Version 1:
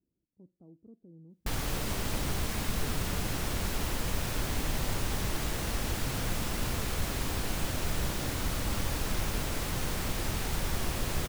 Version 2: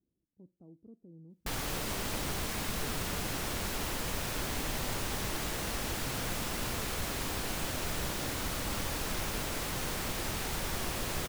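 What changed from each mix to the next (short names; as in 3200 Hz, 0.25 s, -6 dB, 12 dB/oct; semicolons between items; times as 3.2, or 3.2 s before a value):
background: add low shelf 180 Hz -7.5 dB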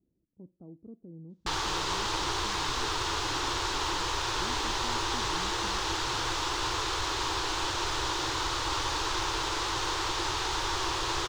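speech +6.5 dB; background: add EQ curve 120 Hz 0 dB, 220 Hz -24 dB, 330 Hz +8 dB, 640 Hz -3 dB, 930 Hz +13 dB, 2200 Hz +2 dB, 3600 Hz +10 dB, 6700 Hz +5 dB, 12000 Hz -17 dB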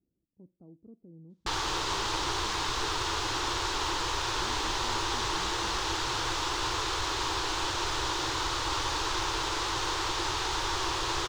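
speech -4.5 dB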